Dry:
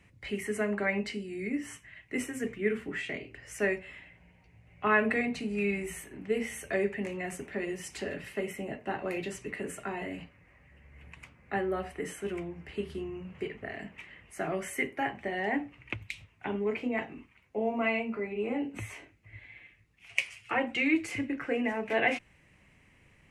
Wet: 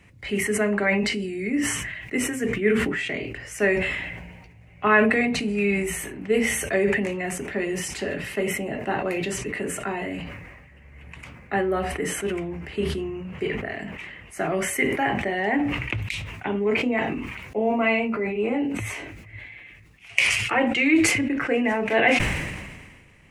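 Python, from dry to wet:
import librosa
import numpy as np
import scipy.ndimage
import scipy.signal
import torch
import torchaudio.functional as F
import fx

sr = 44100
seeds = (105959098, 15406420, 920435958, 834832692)

y = fx.sustainer(x, sr, db_per_s=37.0)
y = y * 10.0 ** (7.0 / 20.0)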